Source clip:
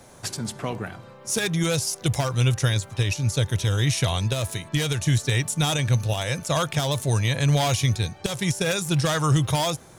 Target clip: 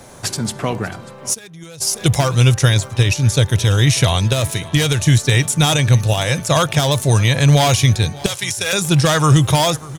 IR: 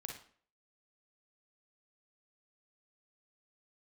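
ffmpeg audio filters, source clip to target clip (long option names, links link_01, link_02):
-filter_complex "[0:a]asettb=1/sr,asplit=3[link_01][link_02][link_03];[link_01]atrim=end=8.284[link_04];[link_02]atrim=start=8.28:end=8.73,asetpts=PTS-STARTPTS,afade=type=in:duration=0.004:curve=qsin,afade=type=out:start_time=0.446:duration=0.004:curve=qsin,highpass=frequency=1400:poles=1[link_05];[link_03]atrim=start=8.726[link_06];[link_04][link_05]acrossfade=duration=0.004:curve1=hsin:curve2=qsin[link_07];[link_07][link_06]acrossfade=duration=0.004:curve1=qsin:curve2=hsin,aecho=1:1:591:0.0944,asplit=3[link_08][link_09][link_10];[link_08]afade=type=out:start_time=1.33:duration=0.02[link_11];[link_09]agate=range=-22dB:threshold=-18dB:ratio=16:detection=peak,afade=type=in:start_time=1.33:duration=0.02,afade=type=out:start_time=1.8:duration=0.02[link_12];[link_10]afade=type=in:start_time=1.8:duration=0.02[link_13];[link_11][link_12][link_13]amix=inputs=3:normalize=0,volume=8.5dB"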